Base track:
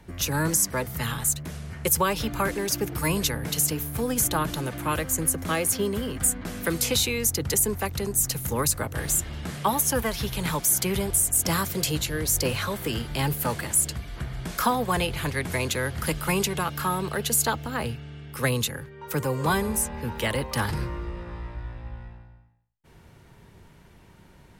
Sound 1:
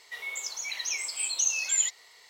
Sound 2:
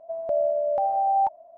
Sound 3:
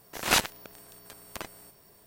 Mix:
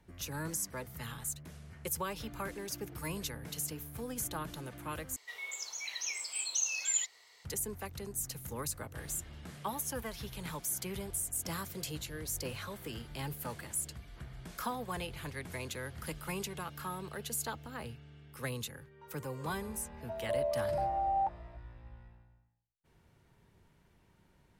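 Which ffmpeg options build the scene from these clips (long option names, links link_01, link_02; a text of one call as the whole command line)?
ffmpeg -i bed.wav -i cue0.wav -i cue1.wav -filter_complex "[0:a]volume=-14dB,asplit=2[link_01][link_02];[link_01]atrim=end=5.164[link_03];[1:a]atrim=end=2.29,asetpts=PTS-STARTPTS,volume=-6dB[link_04];[link_02]atrim=start=7.446[link_05];[2:a]atrim=end=1.57,asetpts=PTS-STARTPTS,volume=-9.5dB,afade=type=in:duration=0.004:curve=hsin,afade=type=out:start_time=1.566:duration=0.004:curve=hsin,adelay=20000[link_06];[link_03][link_04]acrossfade=duration=0.004:curve1=hsin:curve2=hsin[link_07];[link_07][link_05]acrossfade=duration=0.004:curve1=hsin:curve2=hsin[link_08];[link_08][link_06]amix=inputs=2:normalize=0" out.wav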